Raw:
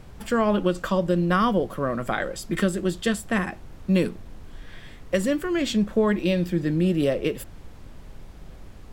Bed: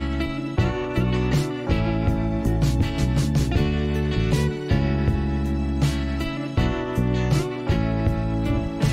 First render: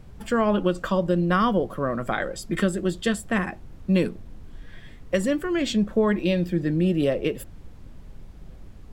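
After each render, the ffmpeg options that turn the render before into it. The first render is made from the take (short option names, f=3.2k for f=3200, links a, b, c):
-af "afftdn=nr=6:nf=-44"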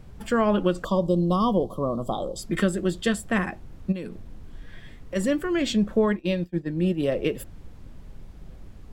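-filter_complex "[0:a]asettb=1/sr,asplit=3[a][b][c];[a]atrim=end=0.844[d];[b]atrim=start=0.84:end=2.39,asetpts=PTS-STARTPTS,afade=t=in:d=0.004:c=qsin,afade=t=out:st=1.546:d=0.004:c=qsin,asuperstop=centerf=1900:order=12:qfactor=0.98[e];[c]atrim=start=2.386[f];[d][e]acrossfade=d=0.004:c1=hsin:c2=qsin[g];[g][f]acrossfade=d=0.004:c1=qsin:c2=hsin,asplit=3[h][i][j];[h]afade=t=out:st=3.91:d=0.02[k];[i]acompressor=threshold=-30dB:ratio=6:attack=3.2:release=140:knee=1:detection=peak,afade=t=in:st=3.91:d=0.02,afade=t=out:st=5.15:d=0.02[l];[j]afade=t=in:st=5.15:d=0.02[m];[k][l][m]amix=inputs=3:normalize=0,asplit=3[n][o][p];[n]afade=t=out:st=6.05:d=0.02[q];[o]agate=range=-33dB:threshold=-19dB:ratio=3:release=100:detection=peak,afade=t=in:st=6.05:d=0.02,afade=t=out:st=7.11:d=0.02[r];[p]afade=t=in:st=7.11:d=0.02[s];[q][r][s]amix=inputs=3:normalize=0"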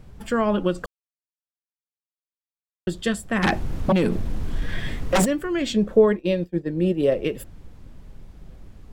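-filter_complex "[0:a]asplit=3[a][b][c];[a]afade=t=out:st=3.42:d=0.02[d];[b]aeval=exprs='0.2*sin(PI/2*3.98*val(0)/0.2)':c=same,afade=t=in:st=3.42:d=0.02,afade=t=out:st=5.24:d=0.02[e];[c]afade=t=in:st=5.24:d=0.02[f];[d][e][f]amix=inputs=3:normalize=0,asettb=1/sr,asplit=3[g][h][i];[g]atrim=end=5.764[j];[h]atrim=start=5.76:end=7.14,asetpts=PTS-STARTPTS,afade=t=in:d=0.004:c=qsin,afade=t=out:st=1.376:d=0.004:c=qsin,equalizer=f=460:t=o:w=0.77:g=8[k];[i]atrim=start=7.136[l];[j][k]acrossfade=d=0.004:c1=hsin:c2=qsin[m];[m][l]acrossfade=d=0.004:c1=qsin:c2=hsin,asplit=3[n][o][p];[n]atrim=end=0.86,asetpts=PTS-STARTPTS,afade=t=out:st=0.856:d=0.004:c=hsin[q];[o]atrim=start=0.86:end=2.87,asetpts=PTS-STARTPTS,volume=0[r];[p]atrim=start=2.87,asetpts=PTS-STARTPTS,afade=t=in:d=0.004:c=hsin[s];[q][r][s]concat=n=3:v=0:a=1"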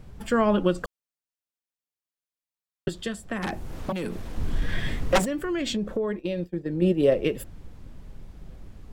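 -filter_complex "[0:a]asettb=1/sr,asplit=3[a][b][c];[a]atrim=end=2.884[d];[b]atrim=start=2.88:end=4.38,asetpts=PTS-STARTPTS,afade=t=in:d=0.004:c=qsin,afade=t=out:st=1.496:d=0.004:c=qsin,acrossover=split=360|920|7200[e][f][g][h];[e]acompressor=threshold=-35dB:ratio=3[i];[f]acompressor=threshold=-37dB:ratio=3[j];[g]acompressor=threshold=-38dB:ratio=3[k];[h]acompressor=threshold=-51dB:ratio=3[l];[i][j][k][l]amix=inputs=4:normalize=0[m];[c]atrim=start=4.376[n];[d][m]acrossfade=d=0.004:c1=hsin:c2=qsin[o];[o][n]acrossfade=d=0.004:c1=qsin:c2=hsin,asettb=1/sr,asplit=3[p][q][r];[p]atrim=end=5.184[s];[q]atrim=start=5.18:end=6.82,asetpts=PTS-STARTPTS,afade=t=in:d=0.004:c=qsin,afade=t=out:st=1.636:d=0.004:c=qsin,acompressor=threshold=-24dB:ratio=6:attack=3.2:release=140:knee=1:detection=peak[t];[r]atrim=start=6.816[u];[s][t]acrossfade=d=0.004:c1=hsin:c2=qsin[v];[v][u]acrossfade=d=0.004:c1=qsin:c2=hsin"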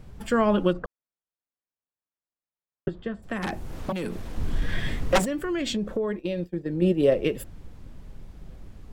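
-filter_complex "[0:a]asplit=3[a][b][c];[a]afade=t=out:st=0.72:d=0.02[d];[b]lowpass=1.5k,afade=t=in:st=0.72:d=0.02,afade=t=out:st=3.22:d=0.02[e];[c]afade=t=in:st=3.22:d=0.02[f];[d][e][f]amix=inputs=3:normalize=0"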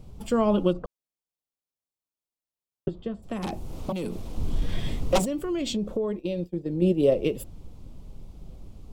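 -af "equalizer=f=1.7k:t=o:w=0.66:g=-15"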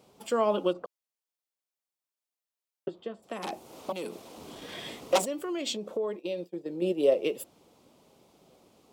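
-af "highpass=420"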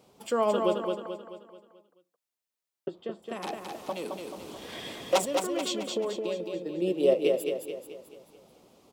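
-af "aecho=1:1:217|434|651|868|1085|1302:0.596|0.274|0.126|0.058|0.0267|0.0123"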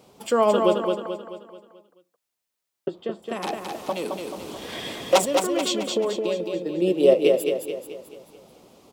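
-af "volume=6.5dB"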